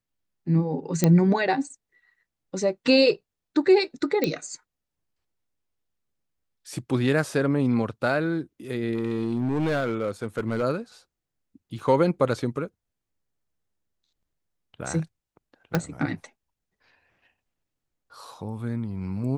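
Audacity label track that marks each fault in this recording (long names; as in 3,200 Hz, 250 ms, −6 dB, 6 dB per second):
1.040000	1.040000	click −6 dBFS
4.240000	4.240000	click −10 dBFS
8.950000	10.640000	clipping −21 dBFS
11.790000	11.790000	drop-out 2.6 ms
15.750000	15.750000	click −9 dBFS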